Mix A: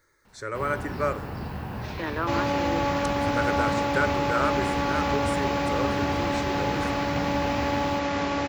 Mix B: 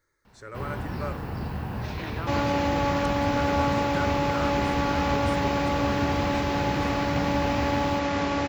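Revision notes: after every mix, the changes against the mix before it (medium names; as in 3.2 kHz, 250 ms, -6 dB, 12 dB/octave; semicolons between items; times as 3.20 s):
speech -9.0 dB; master: add bass shelf 200 Hz +3.5 dB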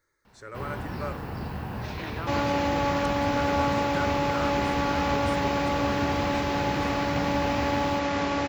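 master: add bass shelf 200 Hz -3.5 dB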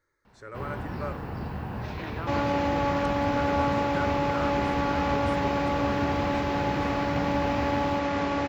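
master: add treble shelf 3.7 kHz -8.5 dB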